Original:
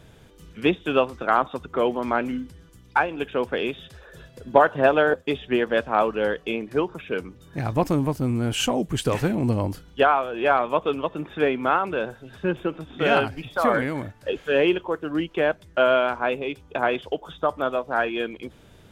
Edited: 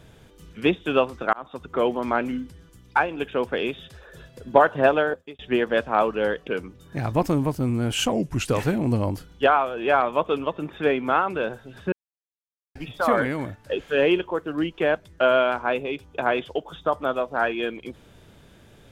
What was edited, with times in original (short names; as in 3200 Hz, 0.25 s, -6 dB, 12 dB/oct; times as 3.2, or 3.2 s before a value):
1.33–1.72 fade in linear
4.88–5.39 fade out
6.47–7.08 cut
8.73–9.02 speed 87%
12.49–13.32 mute